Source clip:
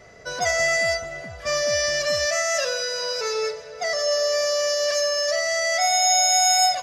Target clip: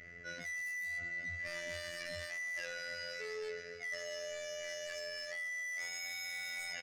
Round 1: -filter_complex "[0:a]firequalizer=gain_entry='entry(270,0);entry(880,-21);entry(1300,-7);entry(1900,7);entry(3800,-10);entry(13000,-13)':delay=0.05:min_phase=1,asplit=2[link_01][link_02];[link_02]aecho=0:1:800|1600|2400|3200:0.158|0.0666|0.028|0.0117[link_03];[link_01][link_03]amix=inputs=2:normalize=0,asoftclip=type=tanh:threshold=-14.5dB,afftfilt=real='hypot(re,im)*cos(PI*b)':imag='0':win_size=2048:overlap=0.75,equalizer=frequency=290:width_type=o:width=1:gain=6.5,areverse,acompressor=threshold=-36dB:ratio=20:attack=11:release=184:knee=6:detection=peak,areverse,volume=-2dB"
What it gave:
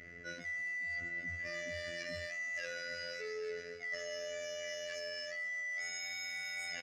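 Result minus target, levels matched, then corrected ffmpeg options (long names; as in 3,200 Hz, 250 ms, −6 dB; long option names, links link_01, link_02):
soft clipping: distortion −13 dB; 250 Hz band +3.5 dB
-filter_complex "[0:a]firequalizer=gain_entry='entry(270,0);entry(880,-21);entry(1300,-7);entry(1900,7);entry(3800,-10);entry(13000,-13)':delay=0.05:min_phase=1,asplit=2[link_01][link_02];[link_02]aecho=0:1:800|1600|2400|3200:0.158|0.0666|0.028|0.0117[link_03];[link_01][link_03]amix=inputs=2:normalize=0,asoftclip=type=tanh:threshold=-26.5dB,afftfilt=real='hypot(re,im)*cos(PI*b)':imag='0':win_size=2048:overlap=0.75,areverse,acompressor=threshold=-36dB:ratio=20:attack=11:release=184:knee=6:detection=peak,areverse,volume=-2dB"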